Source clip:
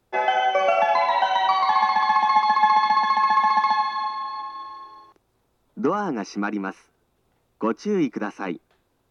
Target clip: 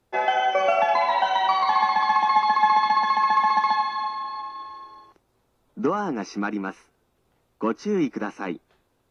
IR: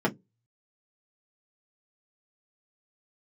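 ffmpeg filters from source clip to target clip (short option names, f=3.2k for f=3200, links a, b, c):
-af "volume=-1dB" -ar 32000 -c:a aac -b:a 48k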